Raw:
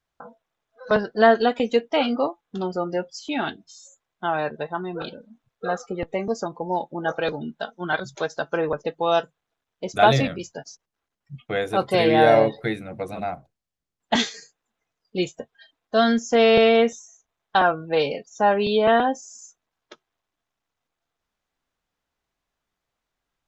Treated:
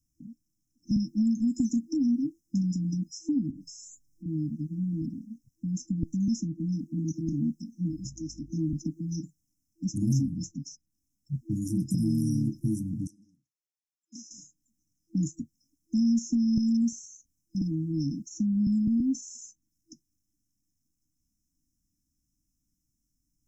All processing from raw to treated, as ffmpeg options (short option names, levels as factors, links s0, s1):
-filter_complex "[0:a]asettb=1/sr,asplit=3[s0][s1][s2];[s0]atrim=end=3.504[s3];[s1]atrim=start=3.5:end=4.26,asetpts=PTS-STARTPTS,afade=t=in:d=0.004:c=qsin,afade=t=out:st=0.756:d=0.004:c=qsin,lowshelf=f=88:g=10.5,aecho=1:1:6.9:0.93,atrim=end_sample=33516,acompressor=threshold=0.00398:ratio=2.5:attack=3.2:release=140:knee=1:detection=peak[s4];[s2]atrim=start=4.256[s5];[s3][s4]acrossfade=d=0.004:c1=hsin:c2=qsin[s6];[s6][s5]acrossfade=d=0.004:c1=qsin:c2=hsin,asettb=1/sr,asplit=3[s7][s8][s9];[s7]atrim=end=7.904[s10];[s8]atrim=start=7.9:end=8.52,asetpts=PTS-STARTPTS,afade=t=in:d=0.004:c=qsin,afade=t=out:st=0.616:d=0.004:c=qsin,equalizer=f=180:t=o:w=0.94:g=-9,aeval=exprs='val(0)+0.00141*(sin(2*PI*50*n/s)+sin(2*PI*2*50*n/s)/2+sin(2*PI*3*50*n/s)/3+sin(2*PI*4*50*n/s)/4+sin(2*PI*5*50*n/s)/5)':c=same[s11];[s9]atrim=start=8.516[s12];[s10][s11]acrossfade=d=0.004:c1=hsin:c2=qsin[s13];[s13][s12]acrossfade=d=0.004:c1=qsin:c2=hsin,asettb=1/sr,asplit=3[s14][s15][s16];[s14]atrim=end=13.074[s17];[s15]atrim=start=13.07:end=14.31,asetpts=PTS-STARTPTS,afade=t=in:d=0.004:c=qsin,afade=t=out:st=1.236:d=0.004:c=qsin,lowpass=3500,aderivative[s18];[s16]atrim=start=14.306[s19];[s17][s18]acrossfade=d=0.004:c1=hsin:c2=qsin[s20];[s20][s19]acrossfade=d=0.004:c1=qsin:c2=hsin,afftfilt=real='re*(1-between(b*sr/4096,330,5100))':imag='im*(1-between(b*sr/4096,330,5100))':win_size=4096:overlap=0.75,acrossover=split=260|1600[s21][s22][s23];[s21]acompressor=threshold=0.0224:ratio=4[s24];[s22]acompressor=threshold=0.00631:ratio=4[s25];[s23]acompressor=threshold=0.00158:ratio=4[s26];[s24][s25][s26]amix=inputs=3:normalize=0,adynamicequalizer=threshold=0.00112:dfrequency=2200:dqfactor=0.7:tfrequency=2200:tqfactor=0.7:attack=5:release=100:ratio=0.375:range=2.5:mode=boostabove:tftype=highshelf,volume=2.37"